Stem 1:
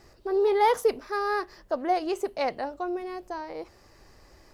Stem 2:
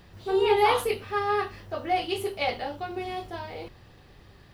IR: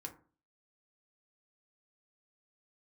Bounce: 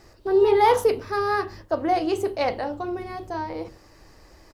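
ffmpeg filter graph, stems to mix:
-filter_complex "[0:a]volume=1,asplit=3[s0][s1][s2];[s1]volume=0.841[s3];[1:a]tiltshelf=f=740:g=7,adelay=5.8,volume=0.596[s4];[s2]apad=whole_len=200090[s5];[s4][s5]sidechaingate=range=0.0224:threshold=0.00316:ratio=16:detection=peak[s6];[2:a]atrim=start_sample=2205[s7];[s3][s7]afir=irnorm=-1:irlink=0[s8];[s0][s6][s8]amix=inputs=3:normalize=0"

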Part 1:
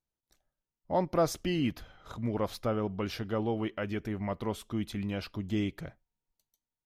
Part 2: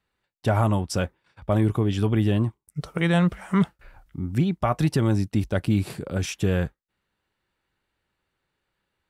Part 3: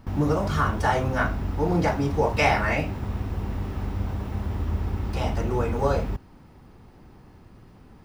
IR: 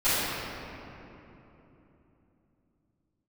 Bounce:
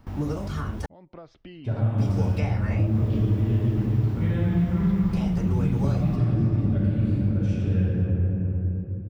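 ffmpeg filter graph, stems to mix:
-filter_complex "[0:a]lowpass=f=4000:w=0.5412,lowpass=f=4000:w=1.3066,acompressor=threshold=0.02:ratio=12,volume=0.531[s0];[1:a]aemphasis=mode=reproduction:type=riaa,adelay=1200,volume=0.106,asplit=2[s1][s2];[s2]volume=0.668[s3];[2:a]volume=0.631,asplit=3[s4][s5][s6];[s4]atrim=end=0.86,asetpts=PTS-STARTPTS,afade=t=out:st=0.856:d=0.004:c=hsin[s7];[s5]atrim=start=0.86:end=1.98,asetpts=PTS-STARTPTS,volume=0[s8];[s6]atrim=start=1.98,asetpts=PTS-STARTPTS,afade=t=in:d=0.004:c=hsin[s9];[s7][s8][s9]concat=n=3:v=0:a=1,asplit=2[s10][s11];[s11]apad=whole_len=302192[s12];[s0][s12]sidechaincompress=threshold=0.0224:ratio=8:attack=30:release=329[s13];[3:a]atrim=start_sample=2205[s14];[s3][s14]afir=irnorm=-1:irlink=0[s15];[s13][s1][s10][s15]amix=inputs=4:normalize=0,acrossover=split=430|1900[s16][s17][s18];[s16]acompressor=threshold=0.112:ratio=4[s19];[s17]acompressor=threshold=0.00891:ratio=4[s20];[s18]acompressor=threshold=0.00562:ratio=4[s21];[s19][s20][s21]amix=inputs=3:normalize=0"

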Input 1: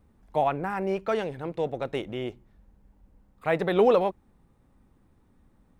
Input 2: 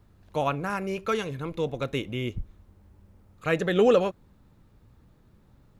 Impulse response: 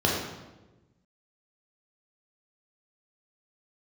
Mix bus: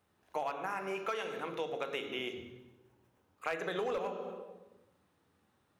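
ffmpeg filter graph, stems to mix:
-filter_complex "[0:a]volume=0.794,asplit=3[s0][s1][s2];[s1]volume=0.0794[s3];[1:a]volume=0.531,asplit=2[s4][s5];[s5]volume=0.224[s6];[s2]apad=whole_len=255597[s7];[s4][s7]sidechaingate=range=0.0224:threshold=0.00141:ratio=16:detection=peak[s8];[2:a]atrim=start_sample=2205[s9];[s3][s6]amix=inputs=2:normalize=0[s10];[s10][s9]afir=irnorm=-1:irlink=0[s11];[s0][s8][s11]amix=inputs=3:normalize=0,highpass=f=1500:p=1,asoftclip=type=hard:threshold=0.119,acompressor=threshold=0.0224:ratio=6"

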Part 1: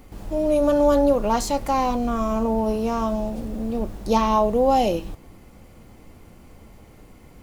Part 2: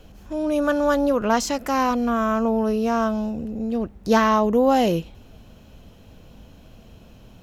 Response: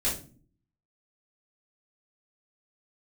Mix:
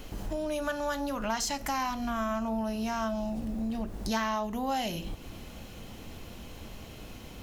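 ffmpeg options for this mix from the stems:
-filter_complex "[0:a]acompressor=threshold=0.0631:ratio=6,volume=1.12[s0];[1:a]tiltshelf=f=940:g=-7.5,volume=0.944,asplit=2[s1][s2];[s2]volume=0.106[s3];[2:a]atrim=start_sample=2205[s4];[s3][s4]afir=irnorm=-1:irlink=0[s5];[s0][s1][s5]amix=inputs=3:normalize=0,acompressor=threshold=0.02:ratio=2.5"

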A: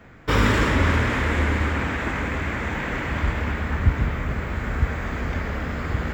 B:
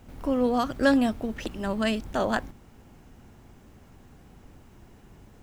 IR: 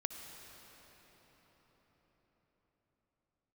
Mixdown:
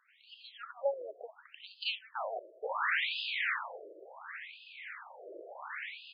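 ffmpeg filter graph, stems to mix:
-filter_complex "[0:a]adelay=2350,volume=0.841,afade=t=out:st=3.51:d=0.36:silence=0.334965,afade=t=in:st=5.14:d=0.22:silence=0.473151[s0];[1:a]volume=0.376,asplit=3[s1][s2][s3];[s2]volume=0.0891[s4];[s3]volume=0.119[s5];[2:a]atrim=start_sample=2205[s6];[s4][s6]afir=irnorm=-1:irlink=0[s7];[s5]aecho=0:1:191:1[s8];[s0][s1][s7][s8]amix=inputs=4:normalize=0,equalizer=f=6000:w=0.37:g=11,afftfilt=real='re*between(b*sr/1024,460*pow(3600/460,0.5+0.5*sin(2*PI*0.7*pts/sr))/1.41,460*pow(3600/460,0.5+0.5*sin(2*PI*0.7*pts/sr))*1.41)':imag='im*between(b*sr/1024,460*pow(3600/460,0.5+0.5*sin(2*PI*0.7*pts/sr))/1.41,460*pow(3600/460,0.5+0.5*sin(2*PI*0.7*pts/sr))*1.41)':win_size=1024:overlap=0.75"

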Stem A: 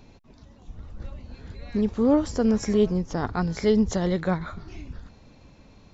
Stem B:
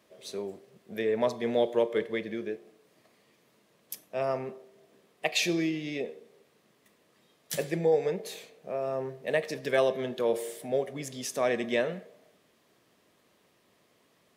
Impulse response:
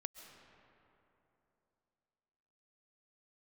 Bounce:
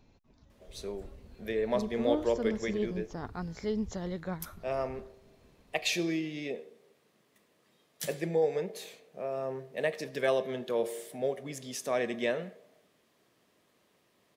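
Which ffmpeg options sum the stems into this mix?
-filter_complex "[0:a]volume=0.251[s0];[1:a]adelay=500,volume=0.708[s1];[s0][s1]amix=inputs=2:normalize=0"

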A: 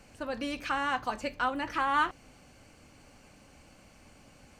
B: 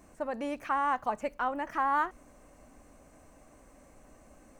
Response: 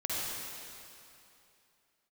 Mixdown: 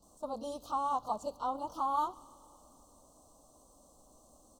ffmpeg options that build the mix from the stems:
-filter_complex "[0:a]bandreject=f=1500:w=12,volume=0.251,asplit=2[s0][s1];[s1]volume=0.141[s2];[1:a]tiltshelf=f=840:g=-5.5,volume=-1,adelay=24,volume=0.708,asplit=2[s3][s4];[s4]apad=whole_len=202805[s5];[s0][s5]sidechaingate=range=0.0224:threshold=0.00316:ratio=16:detection=peak[s6];[2:a]atrim=start_sample=2205[s7];[s2][s7]afir=irnorm=-1:irlink=0[s8];[s6][s3][s8]amix=inputs=3:normalize=0,asuperstop=centerf=2000:order=8:qfactor=0.87"

